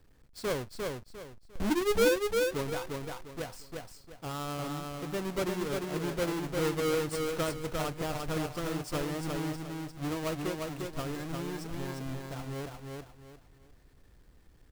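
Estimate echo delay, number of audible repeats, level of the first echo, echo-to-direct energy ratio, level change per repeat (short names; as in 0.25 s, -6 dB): 0.351 s, 4, -3.5 dB, -3.0 dB, -10.5 dB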